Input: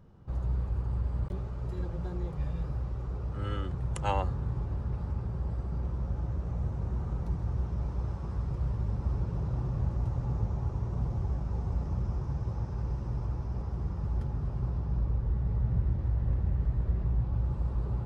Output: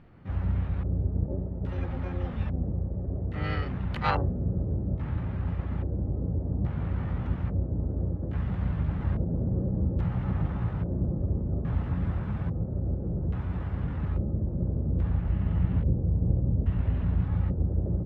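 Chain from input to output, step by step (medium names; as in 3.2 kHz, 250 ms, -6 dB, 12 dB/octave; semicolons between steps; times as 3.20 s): LFO low-pass square 0.6 Hz 340–2100 Hz; harmony voices +7 st -1 dB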